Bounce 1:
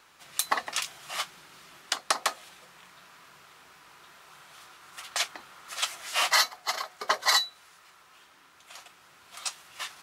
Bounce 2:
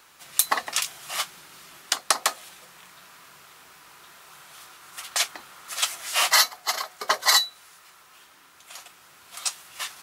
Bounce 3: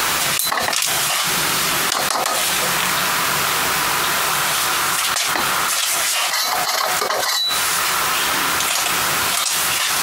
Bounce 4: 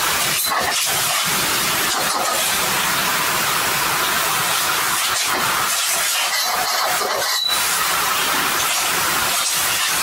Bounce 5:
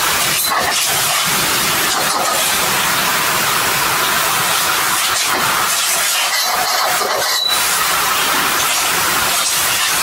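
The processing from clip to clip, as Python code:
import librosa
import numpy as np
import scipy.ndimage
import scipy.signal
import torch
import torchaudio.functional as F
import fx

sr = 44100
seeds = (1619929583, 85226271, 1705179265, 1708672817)

y1 = fx.high_shelf(x, sr, hz=8000.0, db=10.0)
y1 = F.gain(torch.from_numpy(y1), 2.5).numpy()
y2 = fx.env_flatten(y1, sr, amount_pct=100)
y2 = F.gain(torch.from_numpy(y2), -3.5).numpy()
y3 = fx.phase_scramble(y2, sr, seeds[0], window_ms=50)
y4 = fx.echo_wet_lowpass(y3, sr, ms=134, feedback_pct=75, hz=1200.0, wet_db=-14.5)
y4 = F.gain(torch.from_numpy(y4), 3.5).numpy()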